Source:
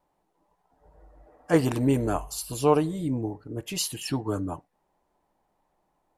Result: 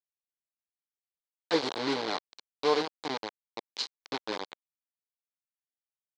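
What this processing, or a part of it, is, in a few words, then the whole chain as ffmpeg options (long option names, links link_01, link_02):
hand-held game console: -af "acrusher=bits=3:mix=0:aa=0.000001,highpass=460,equalizer=frequency=650:width_type=q:width=4:gain=-8,equalizer=frequency=1300:width_type=q:width=4:gain=-7,equalizer=frequency=1800:width_type=q:width=4:gain=-5,equalizer=frequency=2700:width_type=q:width=4:gain=-7,equalizer=frequency=4200:width_type=q:width=4:gain=6,lowpass=frequency=4700:width=0.5412,lowpass=frequency=4700:width=1.3066,volume=-1dB"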